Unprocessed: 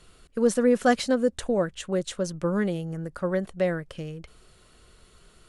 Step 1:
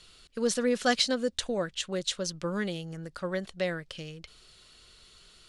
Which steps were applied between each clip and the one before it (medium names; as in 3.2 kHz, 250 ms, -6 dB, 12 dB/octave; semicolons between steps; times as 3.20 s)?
peaking EQ 4.2 kHz +15 dB 2 oct; trim -7 dB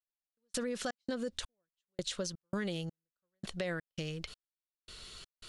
trance gate "...xx.xx" 83 bpm -60 dB; peak limiter -25 dBFS, peak gain reduction 11 dB; compression 3:1, threshold -42 dBFS, peak gain reduction 9.5 dB; trim +6 dB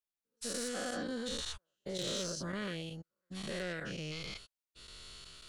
every event in the spectrogram widened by 240 ms; saturation -20.5 dBFS, distortion -21 dB; trim -7 dB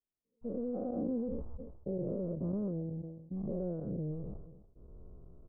Gaussian low-pass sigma 14 samples; echo from a far wall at 49 m, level -28 dB; decay stretcher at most 55 dB/s; trim +6.5 dB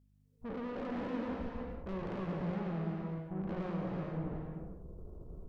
hum 50 Hz, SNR 29 dB; valve stage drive 45 dB, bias 0.7; gated-style reverb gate 490 ms flat, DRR -1 dB; trim +5.5 dB